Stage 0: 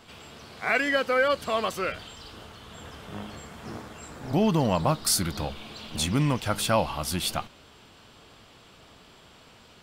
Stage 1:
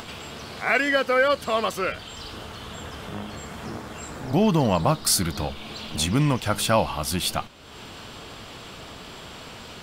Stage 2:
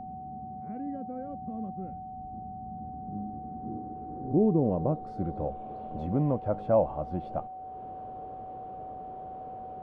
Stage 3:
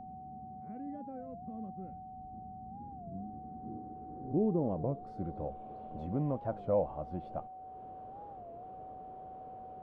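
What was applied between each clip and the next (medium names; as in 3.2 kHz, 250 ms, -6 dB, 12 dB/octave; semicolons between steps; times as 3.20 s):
upward compressor, threshold -33 dBFS; trim +3 dB
low-pass sweep 210 Hz -> 590 Hz, 2.69–5.65 s; whistle 750 Hz -32 dBFS; trim -7 dB
warped record 33 1/3 rpm, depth 160 cents; trim -6.5 dB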